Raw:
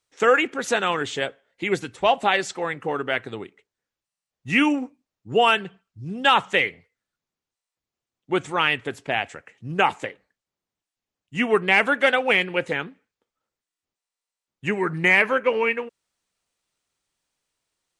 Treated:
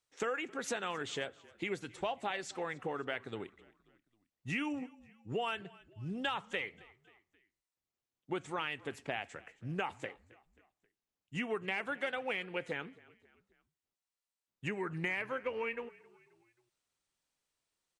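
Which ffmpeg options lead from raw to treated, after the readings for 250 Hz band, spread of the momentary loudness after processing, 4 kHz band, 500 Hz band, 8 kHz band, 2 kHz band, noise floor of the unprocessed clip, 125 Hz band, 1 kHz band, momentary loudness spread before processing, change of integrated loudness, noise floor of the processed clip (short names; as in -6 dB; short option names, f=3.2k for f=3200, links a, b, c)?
-14.5 dB, 11 LU, -16.5 dB, -15.5 dB, -11.0 dB, -17.0 dB, under -85 dBFS, -10.5 dB, -17.5 dB, 16 LU, -17.0 dB, under -85 dBFS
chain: -filter_complex "[0:a]acompressor=threshold=-28dB:ratio=4,asplit=2[a][b];[b]asplit=3[c][d][e];[c]adelay=267,afreqshift=-37,volume=-22.5dB[f];[d]adelay=534,afreqshift=-74,volume=-28.7dB[g];[e]adelay=801,afreqshift=-111,volume=-34.9dB[h];[f][g][h]amix=inputs=3:normalize=0[i];[a][i]amix=inputs=2:normalize=0,volume=-7dB"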